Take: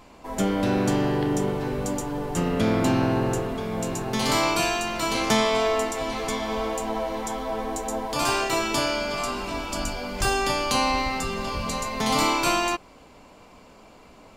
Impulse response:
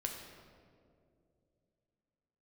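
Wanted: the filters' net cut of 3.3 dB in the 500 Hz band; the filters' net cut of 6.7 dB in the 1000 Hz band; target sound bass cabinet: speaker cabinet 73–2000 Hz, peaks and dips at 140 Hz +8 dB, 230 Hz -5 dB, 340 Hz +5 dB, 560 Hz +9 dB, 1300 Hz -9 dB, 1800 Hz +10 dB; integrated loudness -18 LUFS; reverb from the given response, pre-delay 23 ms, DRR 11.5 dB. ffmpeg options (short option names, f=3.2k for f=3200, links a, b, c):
-filter_complex "[0:a]equalizer=f=500:t=o:g=-9,equalizer=f=1k:t=o:g=-4.5,asplit=2[a][b];[1:a]atrim=start_sample=2205,adelay=23[c];[b][c]afir=irnorm=-1:irlink=0,volume=-12dB[d];[a][d]amix=inputs=2:normalize=0,highpass=f=73:w=0.5412,highpass=f=73:w=1.3066,equalizer=f=140:t=q:w=4:g=8,equalizer=f=230:t=q:w=4:g=-5,equalizer=f=340:t=q:w=4:g=5,equalizer=f=560:t=q:w=4:g=9,equalizer=f=1.3k:t=q:w=4:g=-9,equalizer=f=1.8k:t=q:w=4:g=10,lowpass=f=2k:w=0.5412,lowpass=f=2k:w=1.3066,volume=9.5dB"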